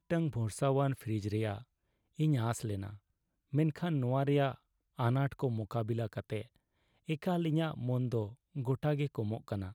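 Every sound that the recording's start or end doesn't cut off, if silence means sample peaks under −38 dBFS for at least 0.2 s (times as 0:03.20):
0:02.19–0:02.90
0:03.53–0:04.52
0:04.99–0:06.42
0:07.09–0:08.27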